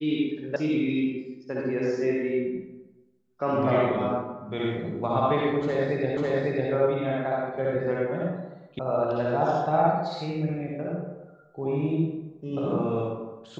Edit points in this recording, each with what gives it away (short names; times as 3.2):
0.56 sound cut off
6.17 repeat of the last 0.55 s
8.79 sound cut off